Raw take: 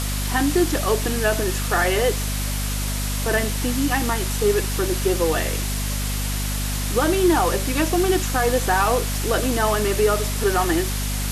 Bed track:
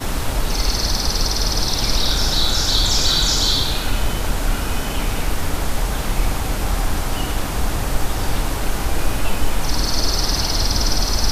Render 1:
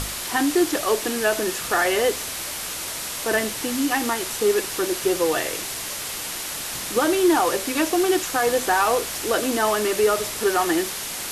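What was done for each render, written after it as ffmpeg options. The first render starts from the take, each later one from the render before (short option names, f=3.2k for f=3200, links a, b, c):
-af "bandreject=f=50:t=h:w=6,bandreject=f=100:t=h:w=6,bandreject=f=150:t=h:w=6,bandreject=f=200:t=h:w=6,bandreject=f=250:t=h:w=6"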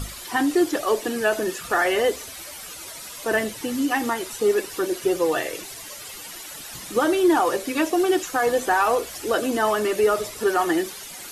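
-af "afftdn=nr=12:nf=-31"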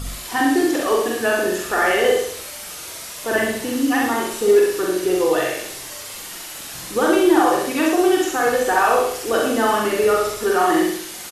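-filter_complex "[0:a]asplit=2[a][b];[b]adelay=44,volume=-2.5dB[c];[a][c]amix=inputs=2:normalize=0,asplit=2[d][e];[e]aecho=0:1:66|132|198|264|330|396:0.708|0.319|0.143|0.0645|0.029|0.0131[f];[d][f]amix=inputs=2:normalize=0"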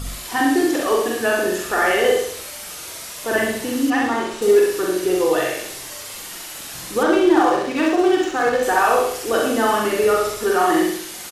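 -filter_complex "[0:a]asettb=1/sr,asplit=3[a][b][c];[a]atrim=end=3.904[d];[b]atrim=start=3.9:end=4.42,asetpts=PTS-STARTPTS,afade=t=in:d=0.004:c=qsin,afade=t=out:st=0.516:d=0.004:c=qsin,adynamicsmooth=sensitivity=1.5:basefreq=5.5k[e];[c]atrim=start=4.416[f];[d][e]acrossfade=d=0.004:c1=hsin:c2=qsin[g];[g][f]acrossfade=d=0.004:c1=qsin:c2=hsin,asettb=1/sr,asplit=3[h][i][j];[h]atrim=end=7.034[k];[i]atrim=start=7.03:end=8.63,asetpts=PTS-STARTPTS,afade=t=in:d=0.004:c=qsin,afade=t=out:st=1.596:d=0.004:c=qsin,adynamicsmooth=sensitivity=2.5:basefreq=3.5k[l];[j]atrim=start=8.626[m];[k][l]acrossfade=d=0.004:c1=hsin:c2=qsin[n];[n][m]acrossfade=d=0.004:c1=qsin:c2=hsin"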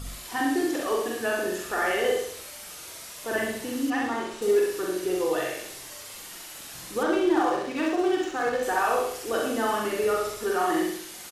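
-af "volume=-8dB"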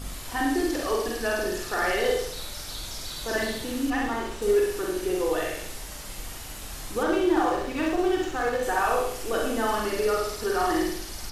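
-filter_complex "[1:a]volume=-20.5dB[a];[0:a][a]amix=inputs=2:normalize=0"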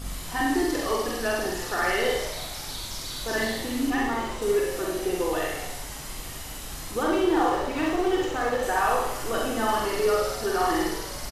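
-filter_complex "[0:a]asplit=2[a][b];[b]adelay=45,volume=-5.5dB[c];[a][c]amix=inputs=2:normalize=0,asplit=7[d][e][f][g][h][i][j];[e]adelay=177,afreqshift=120,volume=-15dB[k];[f]adelay=354,afreqshift=240,volume=-19.7dB[l];[g]adelay=531,afreqshift=360,volume=-24.5dB[m];[h]adelay=708,afreqshift=480,volume=-29.2dB[n];[i]adelay=885,afreqshift=600,volume=-33.9dB[o];[j]adelay=1062,afreqshift=720,volume=-38.7dB[p];[d][k][l][m][n][o][p]amix=inputs=7:normalize=0"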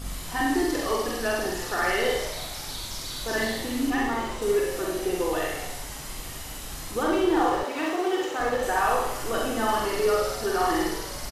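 -filter_complex "[0:a]asettb=1/sr,asplit=3[a][b][c];[a]atrim=end=7.634[d];[b]atrim=start=7.63:end=8.4,asetpts=PTS-STARTPTS,afade=t=in:d=0.004:c=qsin,afade=t=out:st=0.766:d=0.004:c=qsin,highpass=320[e];[c]atrim=start=8.396[f];[d][e]acrossfade=d=0.004:c1=hsin:c2=qsin[g];[g][f]acrossfade=d=0.004:c1=qsin:c2=hsin"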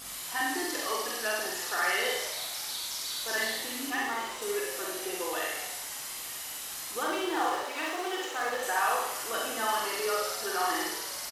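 -af "highpass=f=1.2k:p=1,highshelf=f=11k:g=4.5"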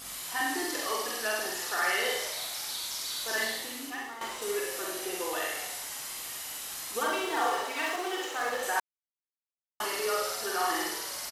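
-filter_complex "[0:a]asettb=1/sr,asplit=3[a][b][c];[a]atrim=end=6.944[d];[b]atrim=start=6.94:end=7.96,asetpts=PTS-STARTPTS,afade=t=in:d=0.004:c=qsin,afade=t=out:st=1.016:d=0.004:c=qsin,aecho=1:1:4.4:0.65,atrim=end_sample=44982[e];[c]atrim=start=7.956[f];[d][e]acrossfade=d=0.004:c1=hsin:c2=qsin[g];[g][f]acrossfade=d=0.004:c1=qsin:c2=hsin,asplit=4[h][i][j][k];[h]atrim=end=4.21,asetpts=PTS-STARTPTS,afade=t=out:st=3.41:d=0.8:silence=0.266073[l];[i]atrim=start=4.21:end=8.8,asetpts=PTS-STARTPTS,afade=t=in:d=0.004:c=hsin:silence=0.266073,afade=t=out:st=4.586:d=0.004:c=hsin[m];[j]atrim=start=8.8:end=9.8,asetpts=PTS-STARTPTS,volume=0[n];[k]atrim=start=9.8,asetpts=PTS-STARTPTS,afade=t=in:d=0.004:c=hsin[o];[l][m][n][o]concat=n=4:v=0:a=1"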